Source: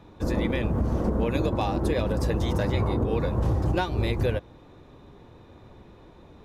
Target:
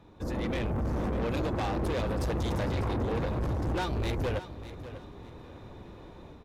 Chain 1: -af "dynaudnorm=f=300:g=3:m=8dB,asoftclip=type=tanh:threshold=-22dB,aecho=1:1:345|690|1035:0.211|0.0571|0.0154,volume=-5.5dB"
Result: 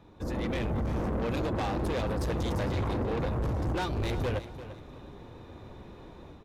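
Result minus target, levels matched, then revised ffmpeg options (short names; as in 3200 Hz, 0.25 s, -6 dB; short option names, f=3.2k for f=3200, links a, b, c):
echo 0.252 s early
-af "dynaudnorm=f=300:g=3:m=8dB,asoftclip=type=tanh:threshold=-22dB,aecho=1:1:597|1194|1791:0.211|0.0571|0.0154,volume=-5.5dB"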